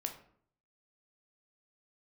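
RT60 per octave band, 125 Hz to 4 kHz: 0.80, 0.70, 0.60, 0.55, 0.50, 0.35 s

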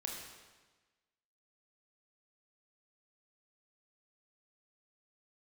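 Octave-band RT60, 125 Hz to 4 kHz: 1.3, 1.3, 1.3, 1.3, 1.2, 1.2 s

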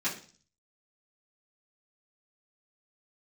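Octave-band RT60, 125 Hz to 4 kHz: 0.70, 0.55, 0.45, 0.40, 0.40, 0.55 s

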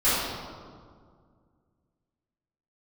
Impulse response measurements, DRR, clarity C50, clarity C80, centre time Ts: -14.5 dB, -3.0 dB, 0.0 dB, 0.119 s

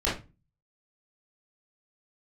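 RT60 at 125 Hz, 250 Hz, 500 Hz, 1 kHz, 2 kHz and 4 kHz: 0.55, 0.45, 0.30, 0.25, 0.25, 0.20 s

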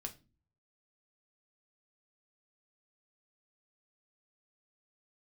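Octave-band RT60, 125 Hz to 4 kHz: 0.85, 0.60, 0.35, 0.25, 0.25, 0.25 s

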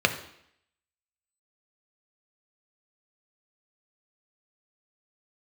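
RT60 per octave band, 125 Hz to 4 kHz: 0.60, 0.70, 0.70, 0.70, 0.75, 0.70 s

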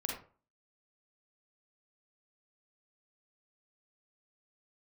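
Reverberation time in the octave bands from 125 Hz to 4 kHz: 0.40, 0.40, 0.40, 0.40, 0.30, 0.25 s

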